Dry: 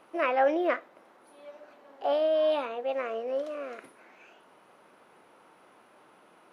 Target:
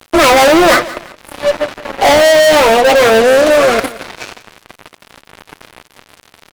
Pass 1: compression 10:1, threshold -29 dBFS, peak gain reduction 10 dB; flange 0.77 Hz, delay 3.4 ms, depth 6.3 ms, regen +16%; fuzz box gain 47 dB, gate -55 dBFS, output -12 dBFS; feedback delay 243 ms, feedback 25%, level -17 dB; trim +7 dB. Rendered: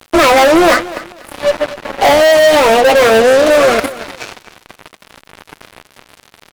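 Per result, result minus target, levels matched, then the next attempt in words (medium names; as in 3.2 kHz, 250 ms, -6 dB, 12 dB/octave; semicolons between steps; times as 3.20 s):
compression: peak gain reduction +10 dB; echo 71 ms late
flange 0.77 Hz, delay 3.4 ms, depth 6.3 ms, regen +16%; fuzz box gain 47 dB, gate -55 dBFS, output -12 dBFS; feedback delay 243 ms, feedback 25%, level -17 dB; trim +7 dB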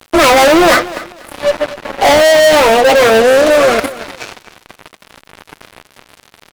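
echo 71 ms late
flange 0.77 Hz, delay 3.4 ms, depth 6.3 ms, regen +16%; fuzz box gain 47 dB, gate -55 dBFS, output -12 dBFS; feedback delay 172 ms, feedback 25%, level -17 dB; trim +7 dB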